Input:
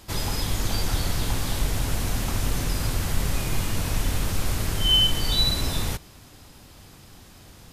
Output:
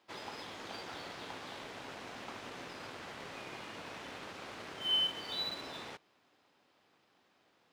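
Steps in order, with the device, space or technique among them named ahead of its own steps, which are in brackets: phone line with mismatched companding (band-pass 370–3200 Hz; companding laws mixed up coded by A); trim -8 dB

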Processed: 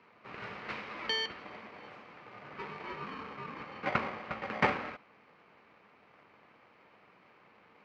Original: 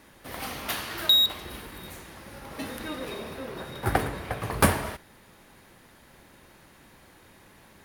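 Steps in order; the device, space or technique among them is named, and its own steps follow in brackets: ring modulator pedal into a guitar cabinet (polarity switched at an audio rate 670 Hz; cabinet simulation 91–3700 Hz, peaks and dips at 210 Hz +7 dB, 460 Hz +3 dB, 1.2 kHz +6 dB, 2.2 kHz +5 dB, 3.5 kHz -8 dB); trim -8.5 dB

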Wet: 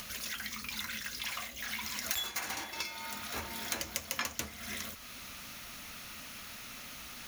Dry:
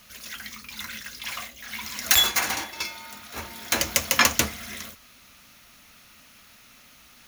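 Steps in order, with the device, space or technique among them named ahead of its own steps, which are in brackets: upward and downward compression (upward compressor, threshold -45 dBFS; compression 4:1, threshold -41 dBFS, peak gain reduction 22.5 dB); trim +4 dB

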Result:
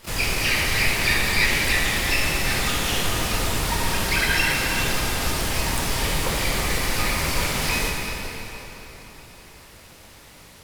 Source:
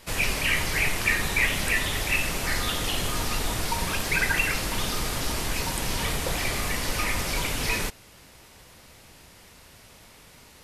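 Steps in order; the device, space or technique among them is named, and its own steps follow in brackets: shimmer-style reverb (harmony voices +12 st -7 dB; reverberation RT60 3.9 s, pre-delay 14 ms, DRR -1.5 dB)

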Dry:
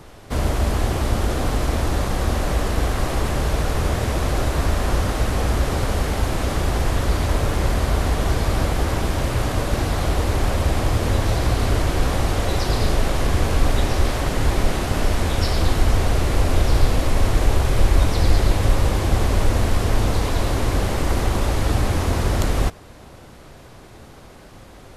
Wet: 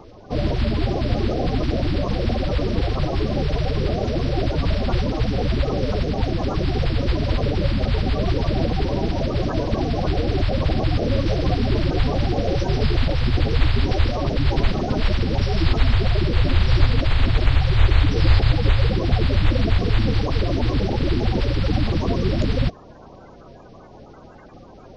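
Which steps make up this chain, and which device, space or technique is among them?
clip after many re-uploads (low-pass 4.5 kHz 24 dB/octave; coarse spectral quantiser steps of 30 dB)

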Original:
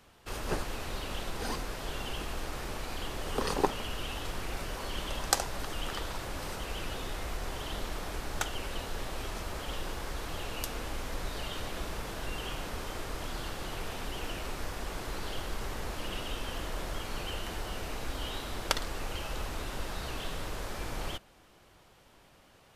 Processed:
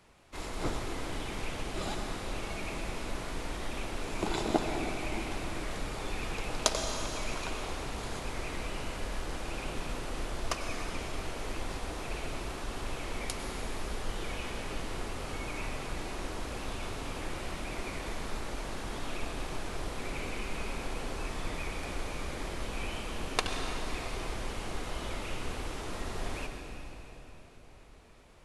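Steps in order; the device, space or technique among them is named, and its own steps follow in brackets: slowed and reverbed (tape speed -20%; reverberation RT60 3.9 s, pre-delay 91 ms, DRR 3.5 dB); trim -1.5 dB

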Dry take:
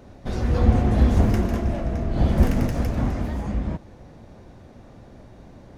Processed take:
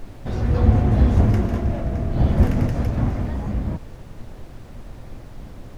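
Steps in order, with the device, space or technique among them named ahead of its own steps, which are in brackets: car interior (peaking EQ 110 Hz +6 dB 0.68 oct; treble shelf 4.4 kHz -7 dB; brown noise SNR 16 dB)

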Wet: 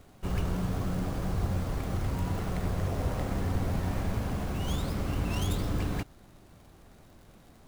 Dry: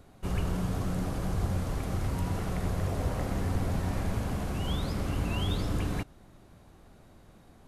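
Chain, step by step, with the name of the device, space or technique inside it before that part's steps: record under a worn stylus (tracing distortion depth 0.32 ms; crackle; pink noise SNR 36 dB)

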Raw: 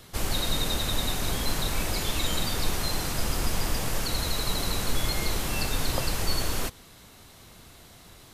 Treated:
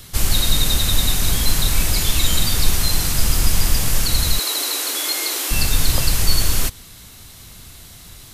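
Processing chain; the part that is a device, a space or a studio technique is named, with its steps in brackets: 4.39–5.51 s: steep high-pass 280 Hz 72 dB/octave; smiley-face EQ (bass shelf 140 Hz +4 dB; peaking EQ 550 Hz -7.5 dB 2.9 oct; treble shelf 5.8 kHz +5.5 dB); trim +8.5 dB

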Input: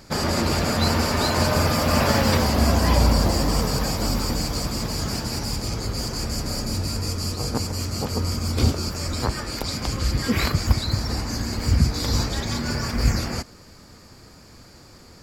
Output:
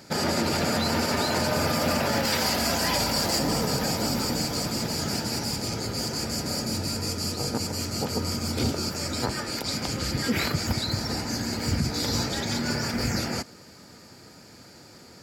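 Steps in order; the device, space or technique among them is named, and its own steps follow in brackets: PA system with an anti-feedback notch (high-pass 130 Hz 12 dB/octave; Butterworth band-stop 1.1 kHz, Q 7.6; peak limiter -15.5 dBFS, peak gain reduction 7 dB); 2.25–3.39 s: tilt shelf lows -5 dB, about 890 Hz

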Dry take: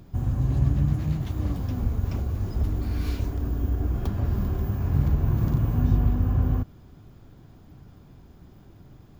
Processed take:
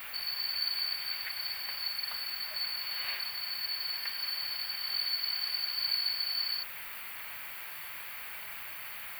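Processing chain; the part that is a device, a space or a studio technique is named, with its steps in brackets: split-band scrambled radio (four frequency bands reordered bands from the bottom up 4321; band-pass 360–3400 Hz; white noise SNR 16 dB); FFT filter 110 Hz 0 dB, 310 Hz -7 dB, 850 Hz +5 dB, 2.3 kHz +13 dB, 6.3 kHz -16 dB, 14 kHz +6 dB

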